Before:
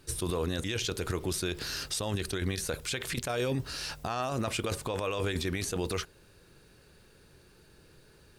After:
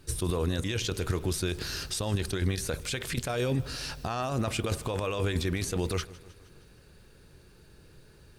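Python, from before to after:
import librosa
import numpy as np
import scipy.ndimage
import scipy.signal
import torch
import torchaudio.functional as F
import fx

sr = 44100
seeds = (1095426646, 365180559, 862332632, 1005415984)

y = fx.low_shelf(x, sr, hz=180.0, db=6.5)
y = fx.echo_feedback(y, sr, ms=156, feedback_pct=60, wet_db=-20)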